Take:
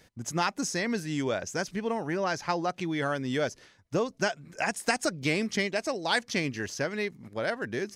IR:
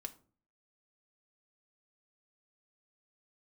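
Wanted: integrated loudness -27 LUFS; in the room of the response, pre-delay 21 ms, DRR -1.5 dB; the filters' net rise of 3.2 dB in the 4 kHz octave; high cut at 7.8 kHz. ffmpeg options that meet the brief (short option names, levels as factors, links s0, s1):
-filter_complex "[0:a]lowpass=7800,equalizer=f=4000:t=o:g=4.5,asplit=2[s0][s1];[1:a]atrim=start_sample=2205,adelay=21[s2];[s1][s2]afir=irnorm=-1:irlink=0,volume=1.78[s3];[s0][s3]amix=inputs=2:normalize=0,volume=0.891"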